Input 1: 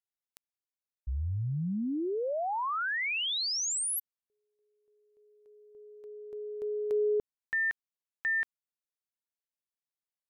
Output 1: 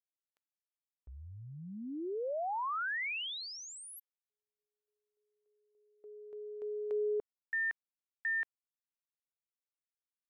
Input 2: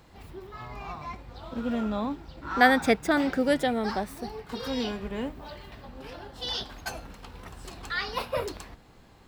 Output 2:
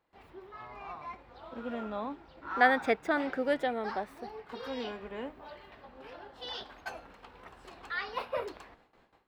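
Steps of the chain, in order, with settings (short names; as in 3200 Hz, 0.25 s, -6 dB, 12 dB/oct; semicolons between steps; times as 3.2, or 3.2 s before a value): gate with hold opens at -45 dBFS, closes at -50 dBFS, hold 16 ms, range -15 dB; tone controls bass -13 dB, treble -14 dB; gain -3.5 dB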